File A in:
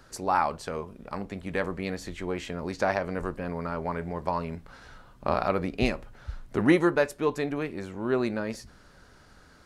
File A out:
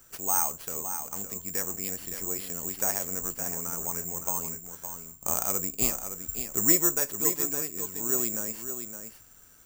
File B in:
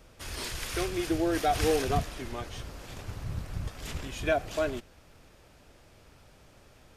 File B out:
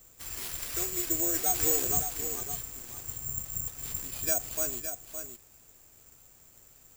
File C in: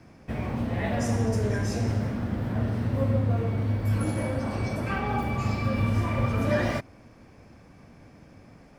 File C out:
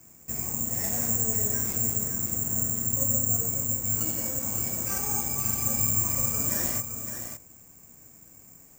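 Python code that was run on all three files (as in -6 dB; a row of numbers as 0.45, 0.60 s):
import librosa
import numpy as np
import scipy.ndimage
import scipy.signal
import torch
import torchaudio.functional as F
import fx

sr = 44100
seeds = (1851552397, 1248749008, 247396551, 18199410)

p1 = fx.notch(x, sr, hz=590.0, q=15.0)
p2 = p1 + fx.echo_single(p1, sr, ms=564, db=-8.5, dry=0)
p3 = (np.kron(p2[::6], np.eye(6)[0]) * 6)[:len(p2)]
y = F.gain(torch.from_numpy(p3), -9.0).numpy()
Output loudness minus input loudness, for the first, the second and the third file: +2.0, +2.0, +2.5 LU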